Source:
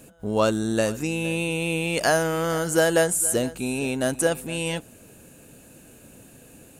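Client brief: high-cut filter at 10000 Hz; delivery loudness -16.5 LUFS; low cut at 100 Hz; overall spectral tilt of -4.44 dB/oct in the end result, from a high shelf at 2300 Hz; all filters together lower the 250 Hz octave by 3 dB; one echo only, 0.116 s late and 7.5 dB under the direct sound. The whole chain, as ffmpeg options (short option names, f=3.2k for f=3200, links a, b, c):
-af "highpass=100,lowpass=10k,equalizer=f=250:t=o:g=-4,highshelf=f=2.3k:g=-5,aecho=1:1:116:0.422,volume=8.5dB"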